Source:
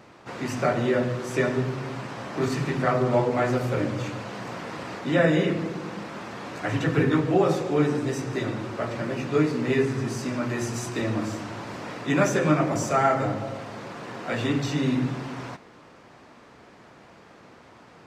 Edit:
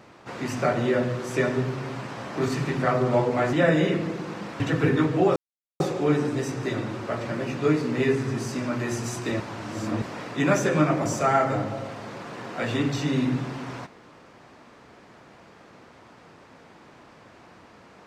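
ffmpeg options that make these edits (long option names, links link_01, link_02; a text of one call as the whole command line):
ffmpeg -i in.wav -filter_complex "[0:a]asplit=6[link_01][link_02][link_03][link_04][link_05][link_06];[link_01]atrim=end=3.532[link_07];[link_02]atrim=start=5.088:end=6.162[link_08];[link_03]atrim=start=6.738:end=7.5,asetpts=PTS-STARTPTS,afade=type=out:start_time=0.758:duration=0.004:curve=hsin,apad=pad_dur=0.44[link_09];[link_04]atrim=start=7.5:end=11.102,asetpts=PTS-STARTPTS,afade=type=in:duration=0.004:curve=hsin[link_10];[link_05]atrim=start=11.098:end=11.722,asetpts=PTS-STARTPTS,areverse[link_11];[link_06]atrim=start=11.718[link_12];[link_07][link_08]acrossfade=duration=0.004:curve1=hsin:curve2=hsin[link_13];[link_09][link_10]concat=n=2:v=0:a=1[link_14];[link_13][link_14]acrossfade=duration=0.004:curve1=hsin:curve2=hsin[link_15];[link_15][link_11]acrossfade=duration=0.004:curve1=hsin:curve2=hsin[link_16];[link_16][link_12]acrossfade=duration=0.004:curve1=hsin:curve2=hsin" out.wav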